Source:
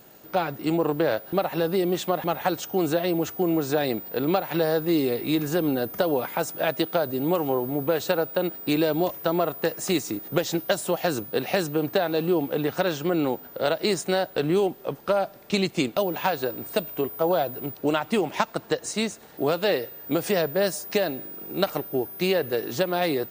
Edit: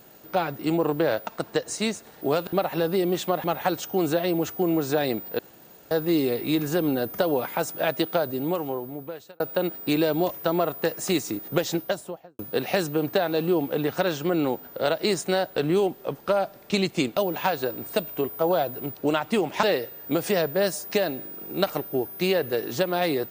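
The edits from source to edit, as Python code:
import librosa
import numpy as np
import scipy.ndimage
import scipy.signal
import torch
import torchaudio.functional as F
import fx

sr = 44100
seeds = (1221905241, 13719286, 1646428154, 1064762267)

y = fx.studio_fade_out(x, sr, start_s=10.47, length_s=0.72)
y = fx.edit(y, sr, fx.room_tone_fill(start_s=4.19, length_s=0.52),
    fx.fade_out_span(start_s=6.97, length_s=1.23),
    fx.move(start_s=18.43, length_s=1.2, to_s=1.27), tone=tone)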